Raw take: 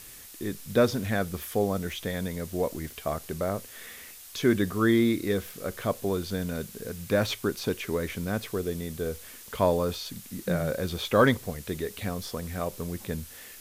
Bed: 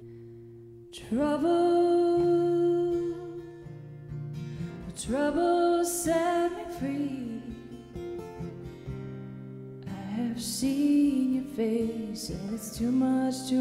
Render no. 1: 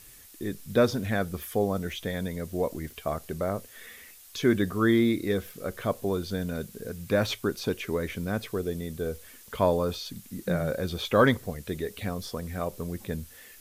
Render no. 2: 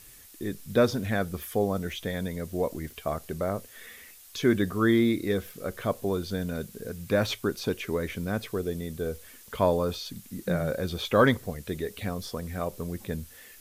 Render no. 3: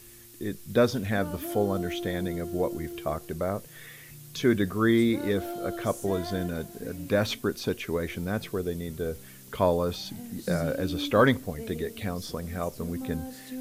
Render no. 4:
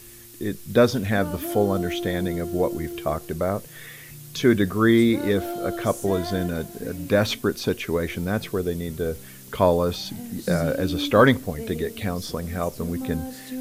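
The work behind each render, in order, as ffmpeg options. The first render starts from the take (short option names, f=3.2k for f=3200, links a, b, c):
-af "afftdn=nr=6:nf=-47"
-af anull
-filter_complex "[1:a]volume=-11.5dB[a];[0:a][a]amix=inputs=2:normalize=0"
-af "volume=5dB"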